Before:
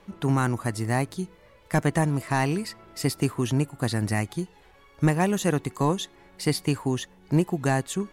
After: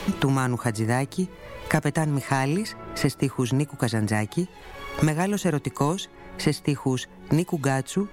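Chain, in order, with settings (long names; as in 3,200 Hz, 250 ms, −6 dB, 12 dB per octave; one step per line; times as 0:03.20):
multiband upward and downward compressor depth 100%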